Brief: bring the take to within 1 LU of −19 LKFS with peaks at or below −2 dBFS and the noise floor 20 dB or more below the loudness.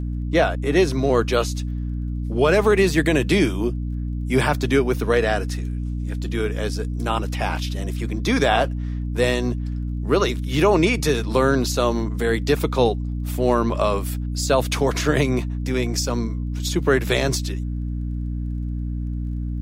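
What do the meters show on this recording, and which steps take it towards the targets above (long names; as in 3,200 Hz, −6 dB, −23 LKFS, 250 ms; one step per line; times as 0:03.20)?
crackle rate 20 per second; mains hum 60 Hz; hum harmonics up to 300 Hz; level of the hum −23 dBFS; integrated loudness −22.0 LKFS; sample peak −5.5 dBFS; target loudness −19.0 LKFS
→ click removal
mains-hum notches 60/120/180/240/300 Hz
level +3 dB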